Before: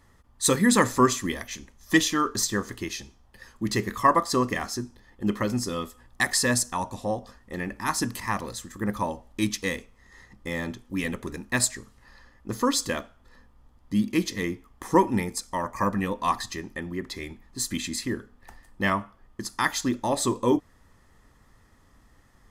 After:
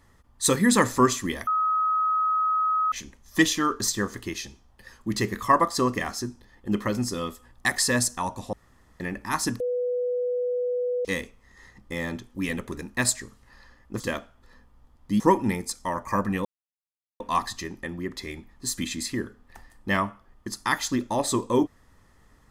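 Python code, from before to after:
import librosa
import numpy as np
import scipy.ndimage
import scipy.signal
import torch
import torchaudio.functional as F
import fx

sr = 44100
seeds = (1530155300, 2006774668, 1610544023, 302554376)

y = fx.edit(x, sr, fx.insert_tone(at_s=1.47, length_s=1.45, hz=1270.0, db=-20.5),
    fx.room_tone_fill(start_s=7.08, length_s=0.47),
    fx.bleep(start_s=8.15, length_s=1.45, hz=493.0, db=-23.5),
    fx.cut(start_s=12.55, length_s=0.27),
    fx.cut(start_s=14.02, length_s=0.86),
    fx.insert_silence(at_s=16.13, length_s=0.75), tone=tone)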